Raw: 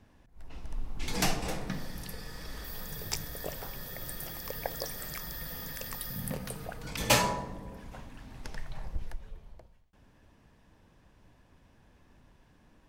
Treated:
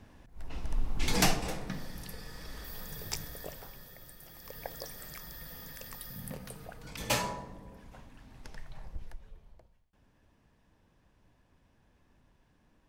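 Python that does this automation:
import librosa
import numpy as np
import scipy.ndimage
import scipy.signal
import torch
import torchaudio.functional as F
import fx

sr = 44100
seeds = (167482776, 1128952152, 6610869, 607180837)

y = fx.gain(x, sr, db=fx.line((1.12, 5.0), (1.54, -2.5), (3.24, -2.5), (4.18, -13.0), (4.63, -6.0)))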